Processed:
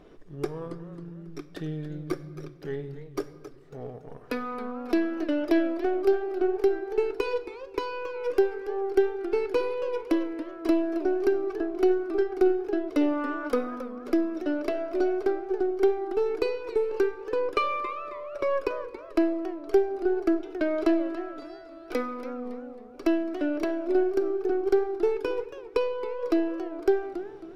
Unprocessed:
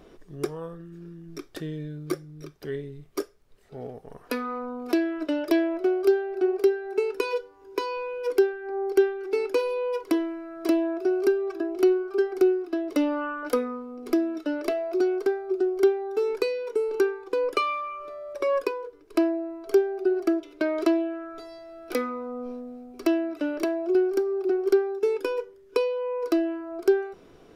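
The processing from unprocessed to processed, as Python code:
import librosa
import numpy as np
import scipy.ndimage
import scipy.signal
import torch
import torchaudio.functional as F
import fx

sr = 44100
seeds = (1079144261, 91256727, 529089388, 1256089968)

y = np.where(x < 0.0, 10.0 ** (-3.0 / 20.0) * x, x)
y = fx.high_shelf(y, sr, hz=5900.0, db=-11.0)
y = fx.room_shoebox(y, sr, seeds[0], volume_m3=2000.0, walls='mixed', distance_m=0.42)
y = fx.echo_warbled(y, sr, ms=276, feedback_pct=36, rate_hz=2.8, cents=201, wet_db=-13.0)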